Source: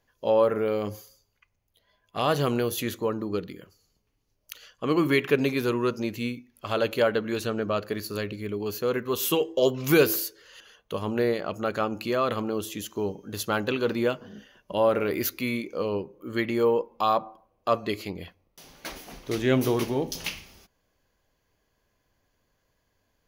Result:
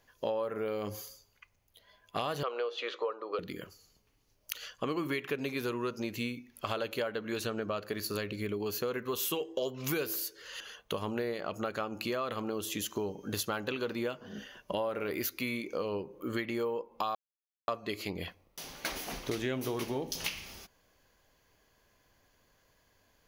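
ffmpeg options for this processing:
-filter_complex "[0:a]asettb=1/sr,asplit=3[a][b][c];[a]atrim=end=2.434[d];[b]atrim=start=2.43:end=3.39,asetpts=PTS-STARTPTS,afade=t=in:d=0.004:c=qsin,afade=t=out:st=0.956:d=0.004:c=qsin,highpass=f=470:w=0.5412,highpass=f=470:w=1.3066,equalizer=f=480:t=q:w=4:g=8,equalizer=f=1.2k:t=q:w=4:g=7,equalizer=f=1.8k:t=q:w=4:g=-4,lowpass=f=4k:w=0.5412,lowpass=f=4k:w=1.3066[e];[c]atrim=start=3.386[f];[d][e]acrossfade=d=0.004:c1=hsin:c2=qsin[g];[g][f]acrossfade=d=0.004:c1=qsin:c2=hsin,asplit=3[h][i][j];[h]atrim=end=17.15,asetpts=PTS-STARTPTS,afade=t=out:st=17.146:d=0.004:c=hsin[k];[i]atrim=start=17.15:end=17.68,asetpts=PTS-STARTPTS,volume=0[l];[j]atrim=start=17.68,asetpts=PTS-STARTPTS,afade=t=in:d=0.004:c=hsin[m];[k][l][m]concat=n=3:v=0:a=1,lowshelf=f=500:g=-4.5,acompressor=threshold=-38dB:ratio=6,volume=6dB"

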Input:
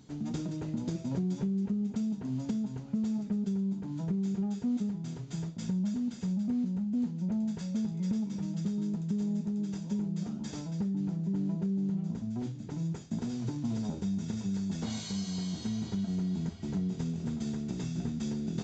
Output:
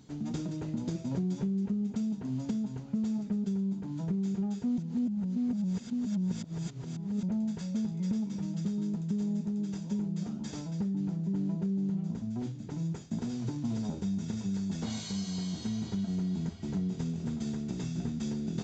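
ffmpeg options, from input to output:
-filter_complex "[0:a]asplit=3[a][b][c];[a]atrim=end=4.782[d];[b]atrim=start=4.778:end=7.232,asetpts=PTS-STARTPTS,areverse[e];[c]atrim=start=7.228[f];[d][e]acrossfade=d=0.004:c1=hsin:c2=hsin[g];[g][f]acrossfade=d=0.004:c1=hsin:c2=hsin"

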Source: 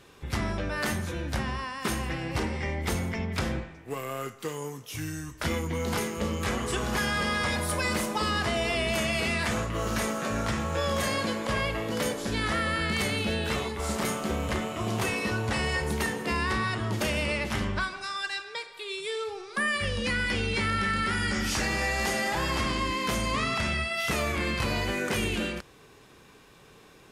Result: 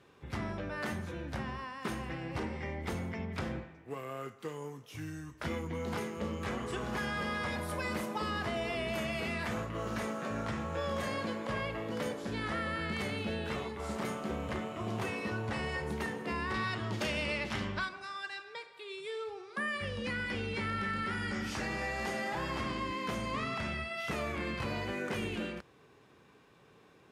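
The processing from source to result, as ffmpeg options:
-filter_complex "[0:a]asettb=1/sr,asplit=3[a][b][c];[a]atrim=end=7.184[d];[b]atrim=start=7.18:end=9.73,asetpts=PTS-STARTPTS,afade=t=in:d=0.004:c=qsin,afade=t=out:st=2.546:d=0.004:c=qsin,equalizer=f=12k:w=5:g=8.5[e];[c]atrim=start=9.726[f];[d][e]acrossfade=d=0.004:c1=hsin:c2=qsin[g];[g][f]acrossfade=d=0.004:c1=qsin:c2=hsin,asettb=1/sr,asplit=3[h][i][j];[h]atrim=end=16.544[k];[i]atrim=start=16.54:end=17.89,asetpts=PTS-STARTPTS,afade=t=in:d=0.004:c=qsin,afade=t=out:st=1.346:d=0.004:c=qsin,equalizer=f=4.5k:t=o:w=2.1:g=7.5[l];[j]atrim=start=17.886[m];[k][l]acrossfade=d=0.004:c1=hsin:c2=qsin[n];[n][m]acrossfade=d=0.004:c1=qsin:c2=hsin,highpass=80,highshelf=f=4k:g=-11.5,volume=-6dB"

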